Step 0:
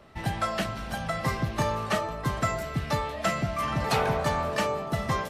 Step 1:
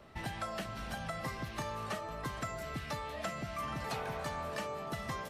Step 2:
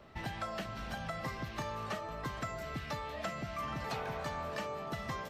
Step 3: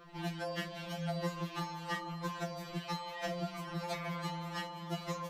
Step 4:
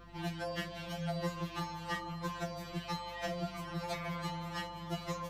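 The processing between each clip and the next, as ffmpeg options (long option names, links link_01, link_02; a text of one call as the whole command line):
ffmpeg -i in.wav -filter_complex "[0:a]acrossover=split=1100|7700[link_01][link_02][link_03];[link_01]acompressor=threshold=-37dB:ratio=4[link_04];[link_02]acompressor=threshold=-40dB:ratio=4[link_05];[link_03]acompressor=threshold=-54dB:ratio=4[link_06];[link_04][link_05][link_06]amix=inputs=3:normalize=0,volume=-3dB" out.wav
ffmpeg -i in.wav -af "equalizer=frequency=10000:width_type=o:width=0.65:gain=-9.5" out.wav
ffmpeg -i in.wav -af "afftfilt=real='re*2.83*eq(mod(b,8),0)':imag='im*2.83*eq(mod(b,8),0)':win_size=2048:overlap=0.75,volume=4.5dB" out.wav
ffmpeg -i in.wav -af "aeval=exprs='val(0)+0.00158*(sin(2*PI*50*n/s)+sin(2*PI*2*50*n/s)/2+sin(2*PI*3*50*n/s)/3+sin(2*PI*4*50*n/s)/4+sin(2*PI*5*50*n/s)/5)':channel_layout=same" out.wav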